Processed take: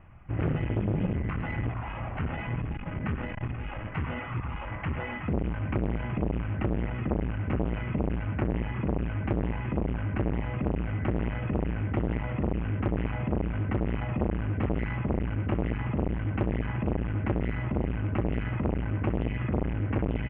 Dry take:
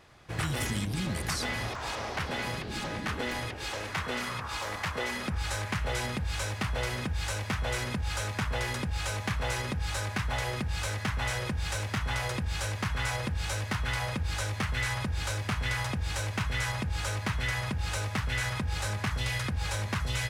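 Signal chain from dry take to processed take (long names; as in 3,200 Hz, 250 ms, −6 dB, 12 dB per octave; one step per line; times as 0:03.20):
Butterworth low-pass 3,000 Hz 96 dB per octave
parametric band 430 Hz −10.5 dB 0.66 octaves
double-tracking delay 26 ms −12 dB
reverb reduction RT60 1.2 s
spectral tilt −3 dB per octave
notch filter 1,700 Hz, Q 22
multi-tap delay 59/65/109/128/374/482 ms −8.5/−14/−9/−9.5/−10/−12.5 dB
saturating transformer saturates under 500 Hz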